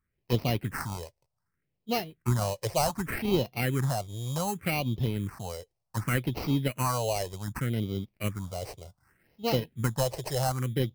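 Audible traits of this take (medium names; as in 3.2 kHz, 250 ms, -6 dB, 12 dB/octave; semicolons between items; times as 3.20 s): aliases and images of a low sample rate 3.5 kHz, jitter 0%; phasing stages 4, 0.66 Hz, lowest notch 230–1600 Hz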